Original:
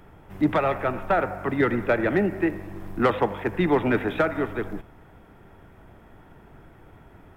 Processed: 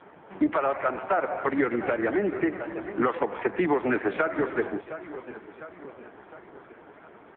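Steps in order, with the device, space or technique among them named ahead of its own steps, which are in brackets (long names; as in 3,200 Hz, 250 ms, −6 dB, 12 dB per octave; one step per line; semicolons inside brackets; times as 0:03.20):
0:02.47–0:03.88: parametric band 630 Hz −3.5 dB 0.24 octaves
repeating echo 707 ms, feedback 54%, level −19.5 dB
0:00.70–0:01.91: dynamic equaliser 160 Hz, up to −5 dB, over −43 dBFS, Q 3.1
voicemail (band-pass filter 310–2,900 Hz; downward compressor 8 to 1, threshold −27 dBFS, peak gain reduction 11 dB; level +7.5 dB; AMR narrowband 5.15 kbit/s 8,000 Hz)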